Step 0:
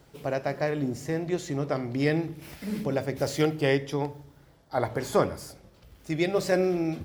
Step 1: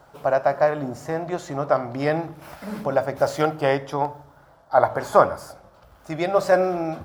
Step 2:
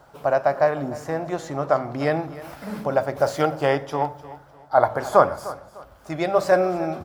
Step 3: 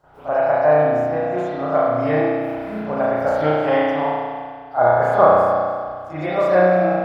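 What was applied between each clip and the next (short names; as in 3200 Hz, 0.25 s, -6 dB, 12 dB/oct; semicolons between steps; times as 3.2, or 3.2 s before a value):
band shelf 930 Hz +13 dB; gain -1 dB
feedback echo 0.301 s, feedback 30%, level -17 dB
reverb RT60 1.8 s, pre-delay 33 ms, DRR -17 dB; gain -13 dB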